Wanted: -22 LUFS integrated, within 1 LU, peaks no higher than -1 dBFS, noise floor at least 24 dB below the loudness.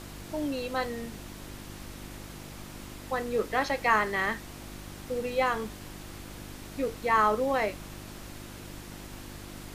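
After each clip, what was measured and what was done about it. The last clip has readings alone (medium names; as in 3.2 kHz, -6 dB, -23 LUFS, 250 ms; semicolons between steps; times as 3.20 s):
hum 50 Hz; highest harmonic 350 Hz; hum level -44 dBFS; noise floor -45 dBFS; noise floor target -54 dBFS; loudness -29.5 LUFS; peak level -10.0 dBFS; loudness target -22.0 LUFS
-> de-hum 50 Hz, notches 7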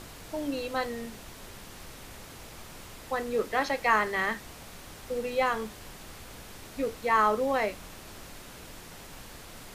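hum not found; noise floor -47 dBFS; noise floor target -53 dBFS
-> noise print and reduce 6 dB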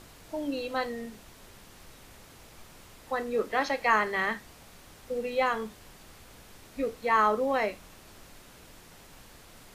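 noise floor -53 dBFS; loudness -29.0 LUFS; peak level -10.0 dBFS; loudness target -22.0 LUFS
-> trim +7 dB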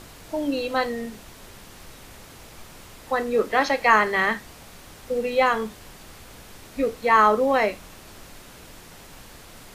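loudness -22.0 LUFS; peak level -3.0 dBFS; noise floor -46 dBFS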